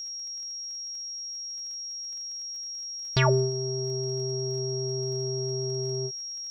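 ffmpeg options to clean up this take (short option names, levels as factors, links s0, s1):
-af "adeclick=t=4,bandreject=f=5600:w=30,agate=range=0.0891:threshold=0.0355"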